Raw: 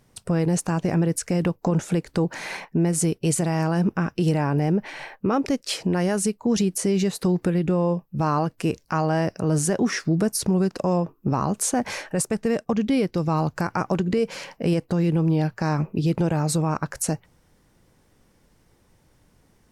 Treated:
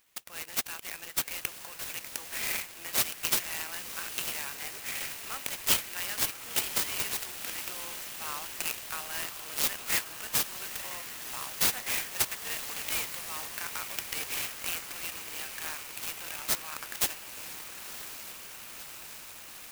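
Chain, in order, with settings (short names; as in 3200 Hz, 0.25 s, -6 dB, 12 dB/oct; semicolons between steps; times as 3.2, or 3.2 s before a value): resonant high-pass 2700 Hz, resonance Q 2.3; on a send: diffused feedback echo 1.023 s, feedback 77%, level -10 dB; on the sum: clock jitter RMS 0.073 ms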